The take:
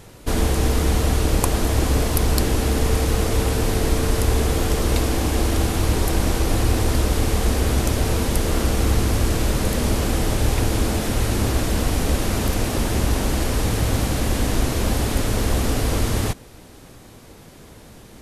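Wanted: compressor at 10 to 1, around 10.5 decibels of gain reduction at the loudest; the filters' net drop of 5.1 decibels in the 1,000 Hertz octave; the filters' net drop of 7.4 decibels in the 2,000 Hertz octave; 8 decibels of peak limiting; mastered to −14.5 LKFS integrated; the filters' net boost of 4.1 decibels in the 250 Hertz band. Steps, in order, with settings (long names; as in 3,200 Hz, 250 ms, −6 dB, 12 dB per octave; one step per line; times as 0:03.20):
parametric band 250 Hz +5.5 dB
parametric band 1,000 Hz −5.5 dB
parametric band 2,000 Hz −8 dB
downward compressor 10 to 1, threshold −24 dBFS
level +17 dB
brickwall limiter −4 dBFS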